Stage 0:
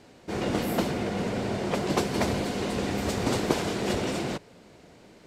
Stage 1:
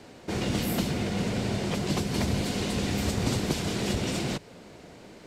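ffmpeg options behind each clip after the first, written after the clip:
ffmpeg -i in.wav -filter_complex "[0:a]acrossover=split=210|2300[link_01][link_02][link_03];[link_02]acompressor=threshold=-37dB:ratio=6[link_04];[link_03]alimiter=level_in=6dB:limit=-24dB:level=0:latency=1:release=260,volume=-6dB[link_05];[link_01][link_04][link_05]amix=inputs=3:normalize=0,volume=4.5dB" out.wav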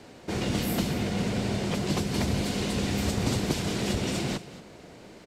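ffmpeg -i in.wav -af "aecho=1:1:230:0.158" out.wav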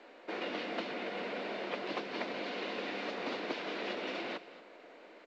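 ffmpeg -i in.wav -af "highpass=frequency=340:width=0.5412,highpass=frequency=340:width=1.3066,equalizer=frequency=390:width_type=q:width=4:gain=-6,equalizer=frequency=820:width_type=q:width=4:gain=-3,equalizer=frequency=3200:width_type=q:width=4:gain=-4,lowpass=frequency=3500:width=0.5412,lowpass=frequency=3500:width=1.3066,volume=-2.5dB" -ar 16000 -c:a pcm_mulaw out.wav

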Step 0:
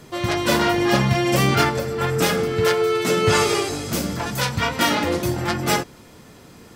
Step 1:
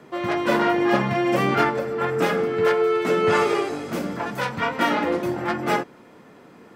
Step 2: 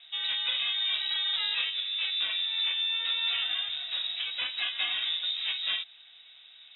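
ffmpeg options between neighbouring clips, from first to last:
ffmpeg -i in.wav -filter_complex "[0:a]acrossover=split=170 2500:gain=0.112 1 0.178[link_01][link_02][link_03];[link_01][link_02][link_03]amix=inputs=3:normalize=0" out.wav
ffmpeg -i in.wav -af "acompressor=threshold=-22dB:ratio=4,lowshelf=frequency=67:gain=8.5,lowpass=frequency=3400:width_type=q:width=0.5098,lowpass=frequency=3400:width_type=q:width=0.6013,lowpass=frequency=3400:width_type=q:width=0.9,lowpass=frequency=3400:width_type=q:width=2.563,afreqshift=-4000,volume=-5.5dB" out.wav

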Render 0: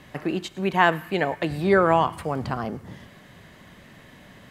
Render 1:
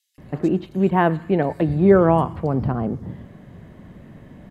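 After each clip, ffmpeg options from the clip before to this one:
ffmpeg -i in.wav -filter_complex "[0:a]tiltshelf=frequency=850:gain=9.5,acrossover=split=4400[link_01][link_02];[link_01]adelay=180[link_03];[link_03][link_02]amix=inputs=2:normalize=0" out.wav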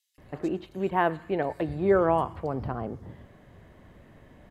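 ffmpeg -i in.wav -af "equalizer=frequency=180:width=0.89:gain=-10,volume=-4.5dB" out.wav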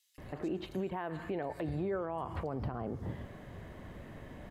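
ffmpeg -i in.wav -af "acompressor=threshold=-27dB:ratio=6,alimiter=level_in=8dB:limit=-24dB:level=0:latency=1:release=127,volume=-8dB,volume=4.5dB" out.wav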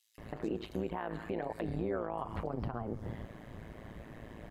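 ffmpeg -i in.wav -af "tremolo=f=110:d=0.889,volume=3.5dB" out.wav

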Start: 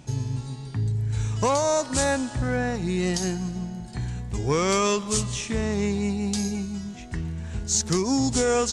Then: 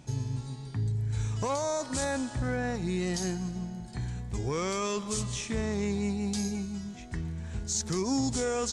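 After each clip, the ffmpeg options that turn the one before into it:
ffmpeg -i in.wav -af "bandreject=frequency=2800:width=19,alimiter=limit=-17dB:level=0:latency=1:release=14,volume=-4.5dB" out.wav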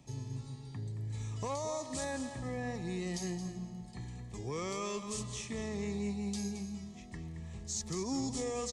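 ffmpeg -i in.wav -filter_complex "[0:a]acrossover=split=120|620|1600[link_01][link_02][link_03][link_04];[link_01]asoftclip=type=tanh:threshold=-39.5dB[link_05];[link_05][link_02][link_03][link_04]amix=inputs=4:normalize=0,asuperstop=centerf=1500:order=20:qfactor=5.6,aecho=1:1:222:0.299,volume=-7dB" out.wav

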